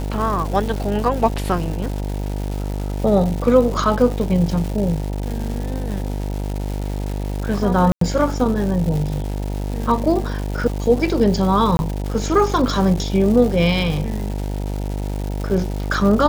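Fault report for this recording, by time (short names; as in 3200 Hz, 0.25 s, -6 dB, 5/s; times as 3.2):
buzz 50 Hz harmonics 19 -24 dBFS
crackle 360/s -26 dBFS
7.92–8.01 gap 93 ms
11.77–11.79 gap 21 ms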